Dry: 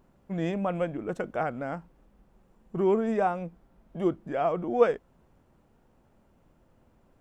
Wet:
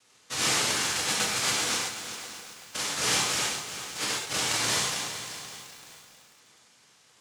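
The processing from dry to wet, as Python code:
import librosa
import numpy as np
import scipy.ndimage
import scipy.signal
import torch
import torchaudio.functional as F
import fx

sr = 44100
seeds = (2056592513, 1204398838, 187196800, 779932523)

y = fx.highpass(x, sr, hz=360.0, slope=6)
y = fx.high_shelf(y, sr, hz=2100.0, db=-11.5)
y = fx.over_compress(y, sr, threshold_db=-32.0, ratio=-0.5)
y = fx.noise_vocoder(y, sr, seeds[0], bands=1)
y = fx.echo_feedback(y, sr, ms=593, feedback_pct=33, wet_db=-16.5)
y = fx.rev_gated(y, sr, seeds[1], gate_ms=160, shape='flat', drr_db=-4.5)
y = fx.echo_crushed(y, sr, ms=382, feedback_pct=55, bits=7, wet_db=-10.5)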